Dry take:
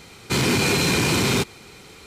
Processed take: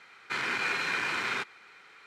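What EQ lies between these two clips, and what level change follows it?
band-pass 1600 Hz, Q 2.3; 0.0 dB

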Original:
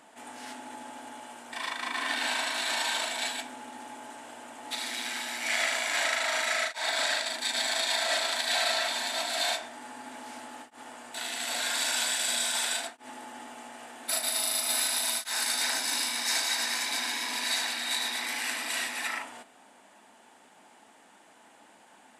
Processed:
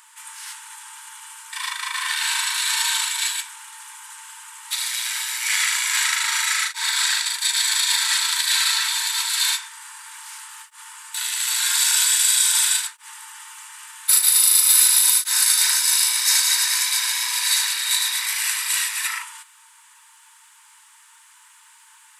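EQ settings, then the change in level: brick-wall FIR high-pass 870 Hz; high shelf 4600 Hz +9 dB; high shelf 9300 Hz +7 dB; +4.0 dB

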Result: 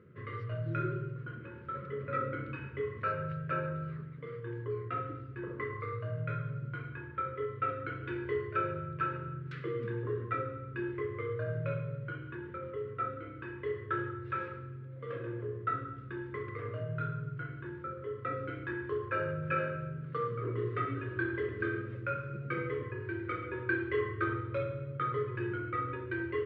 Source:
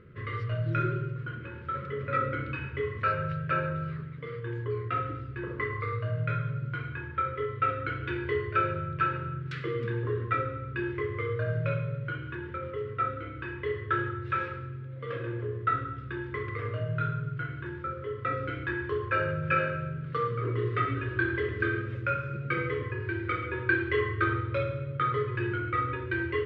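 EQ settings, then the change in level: HPF 120 Hz 12 dB/oct; high shelf 2000 Hz -10 dB; -3.0 dB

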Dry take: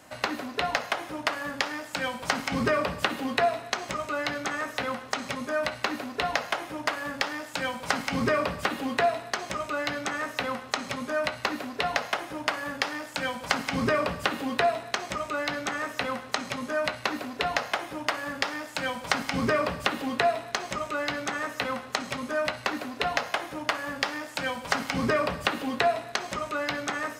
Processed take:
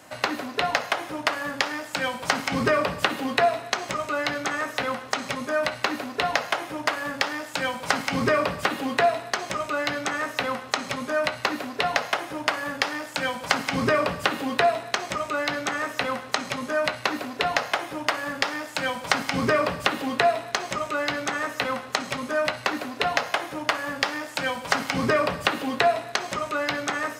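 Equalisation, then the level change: HPF 82 Hz; bell 220 Hz -3 dB 0.44 oct; +3.5 dB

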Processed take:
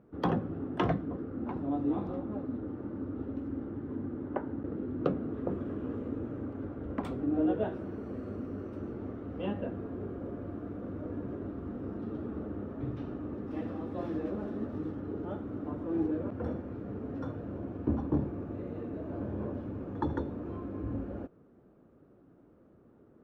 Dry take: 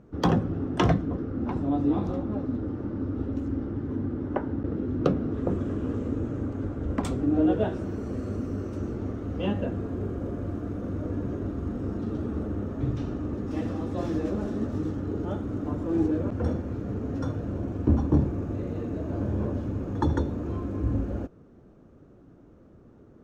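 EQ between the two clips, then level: low shelf 110 Hz -11.5 dB; high shelf 4100 Hz -5.5 dB; bell 6900 Hz -13.5 dB 1.1 oct; -4.5 dB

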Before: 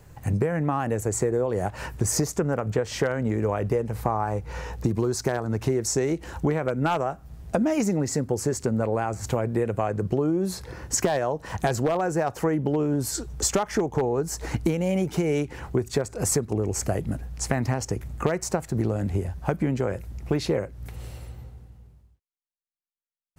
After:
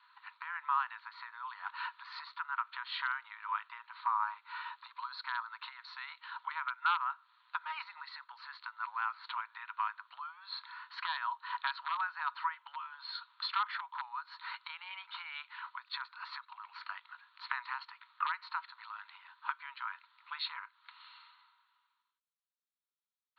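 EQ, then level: rippled Chebyshev high-pass 940 Hz, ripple 6 dB; Chebyshev low-pass 4300 Hz, order 8; bell 2700 Hz -7 dB 1.2 oct; +5.5 dB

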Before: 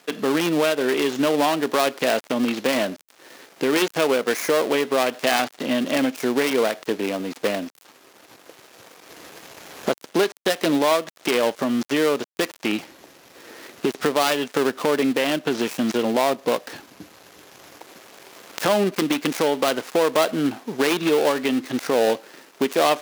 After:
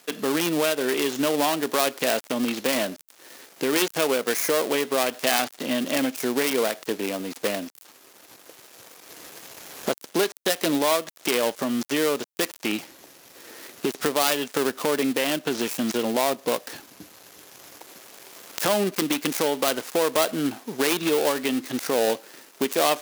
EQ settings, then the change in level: high shelf 5800 Hz +10.5 dB; -3.5 dB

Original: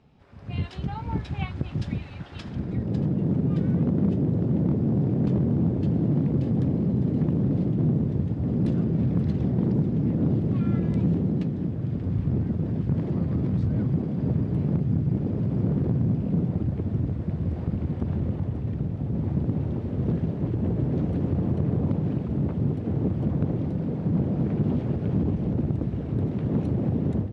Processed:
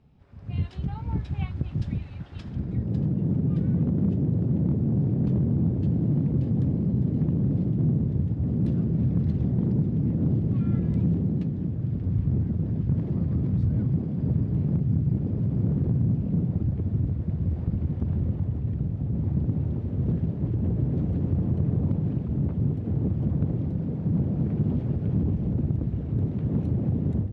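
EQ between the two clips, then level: low shelf 200 Hz +11 dB; -7.0 dB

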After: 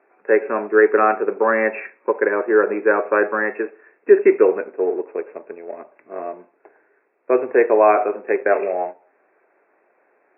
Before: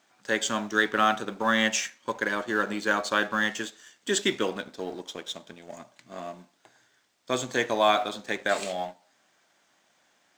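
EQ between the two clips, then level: resonant high-pass 410 Hz, resonance Q 4.9; brick-wall FIR low-pass 2700 Hz; air absorption 330 m; +6.0 dB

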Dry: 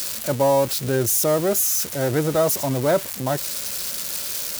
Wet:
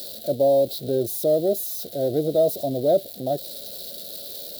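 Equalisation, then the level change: low shelf 140 Hz -7 dB; dynamic EQ 1400 Hz, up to -6 dB, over -38 dBFS, Q 1.3; EQ curve 110 Hz 0 dB, 700 Hz +8 dB, 1000 Hz -28 dB, 1400 Hz -14 dB, 2500 Hz -17 dB, 3900 Hz +5 dB, 6300 Hz -14 dB, 14000 Hz -2 dB; -5.0 dB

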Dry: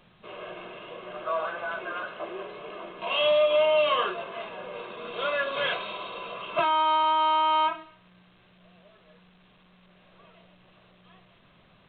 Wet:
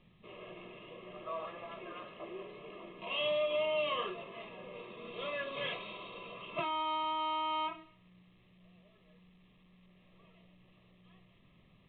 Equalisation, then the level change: Butterworth band-stop 1500 Hz, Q 3.8; air absorption 290 m; bell 800 Hz -10 dB 1.7 oct; -2.0 dB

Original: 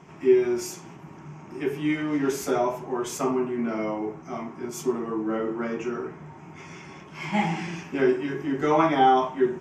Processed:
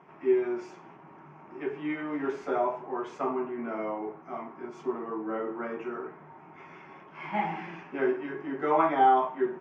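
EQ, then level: band-pass 1200 Hz, Q 0.55; LPF 1700 Hz 6 dB/oct; air absorption 52 m; 0.0 dB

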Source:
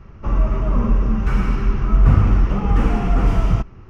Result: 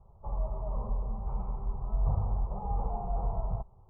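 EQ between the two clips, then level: ladder low-pass 1000 Hz, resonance 55%; fixed phaser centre 680 Hz, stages 4; -5.0 dB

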